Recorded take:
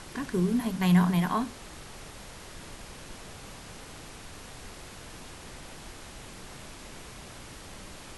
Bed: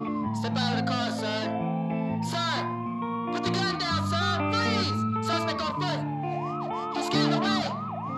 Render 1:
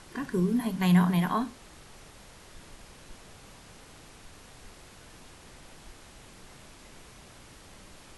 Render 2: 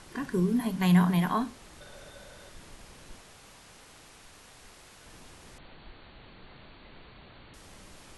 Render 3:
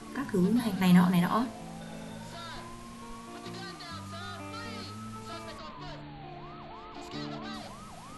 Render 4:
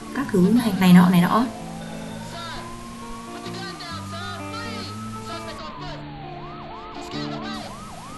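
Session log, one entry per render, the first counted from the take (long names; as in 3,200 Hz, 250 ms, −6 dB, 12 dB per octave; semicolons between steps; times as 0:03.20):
noise reduction from a noise print 6 dB
0:01.80–0:02.48: hollow resonant body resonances 570/1,500/3,600 Hz, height 15 dB → 12 dB; 0:03.21–0:05.06: low-shelf EQ 430 Hz −6.5 dB; 0:05.58–0:07.54: linear-phase brick-wall low-pass 4,600 Hz
mix in bed −15 dB
level +9 dB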